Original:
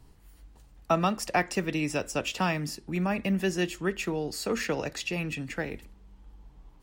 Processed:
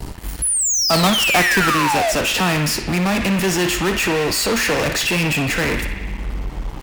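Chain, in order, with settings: 0.93–1.72 s: square wave that keeps the level; 0.42–2.12 s: painted sound fall 610–11000 Hz -29 dBFS; in parallel at -7 dB: fuzz box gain 50 dB, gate -58 dBFS; on the sum: band-passed feedback delay 60 ms, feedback 80%, band-pass 2.2 kHz, level -7 dB

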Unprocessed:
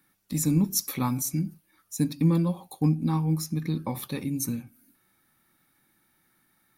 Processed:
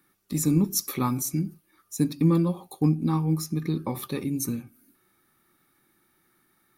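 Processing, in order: small resonant body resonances 380/1200 Hz, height 9 dB, ringing for 35 ms

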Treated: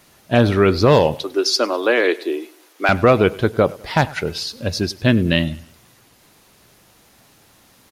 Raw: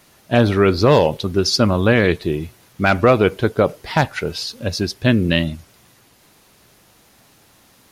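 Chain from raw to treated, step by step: 1.14–2.89 s: steep high-pass 290 Hz 48 dB/octave; feedback delay 100 ms, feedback 42%, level -21.5 dB

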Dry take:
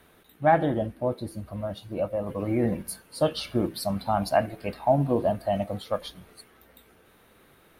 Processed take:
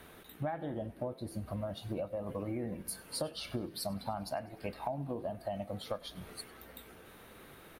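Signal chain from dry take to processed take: compression 12:1, threshold -38 dBFS, peak gain reduction 23.5 dB; on a send: frequency-shifting echo 99 ms, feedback 60%, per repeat +36 Hz, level -23 dB; on the sum: trim +3.5 dB

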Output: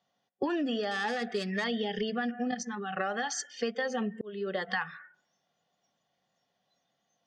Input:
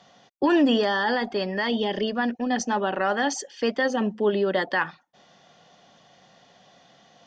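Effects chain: 0.91–1.64 s: self-modulated delay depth 0.08 ms; 2.51–2.97 s: level held to a coarse grid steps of 11 dB; reverberation RT60 0.85 s, pre-delay 124 ms, DRR 18 dB; spectral noise reduction 23 dB; 3.89–4.69 s: slow attack 734 ms; compression 10:1, threshold -28 dBFS, peak gain reduction 12.5 dB

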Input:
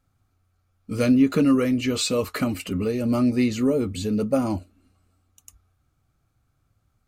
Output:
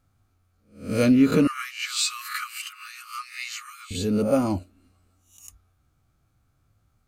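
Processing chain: reverse spectral sustain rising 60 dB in 0.40 s; 1.47–3.91 s: Chebyshev high-pass 1.1 kHz, order 10

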